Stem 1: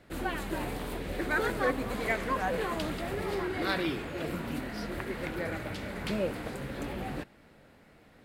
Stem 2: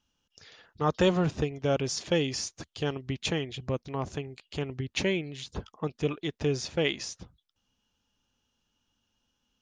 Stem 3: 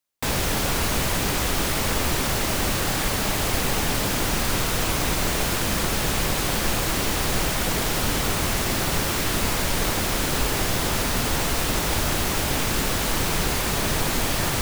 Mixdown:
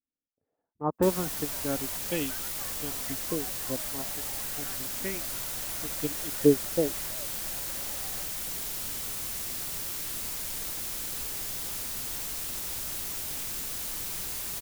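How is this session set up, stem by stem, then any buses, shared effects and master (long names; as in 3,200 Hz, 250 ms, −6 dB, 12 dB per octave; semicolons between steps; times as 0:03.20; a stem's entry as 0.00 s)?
−4.0 dB, 1.00 s, no send, Chebyshev band-pass filter 560–2,000 Hz, order 4; downward compressor, threshold −42 dBFS, peak gain reduction 15 dB
−0.5 dB, 0.00 s, no send, parametric band 270 Hz +11 dB 0.7 octaves; auto-filter low-pass saw up 0.31 Hz 460–5,900 Hz; expander for the loud parts 2.5 to 1, over −31 dBFS
−7.5 dB, 0.80 s, no send, first-order pre-emphasis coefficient 0.8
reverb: not used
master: no processing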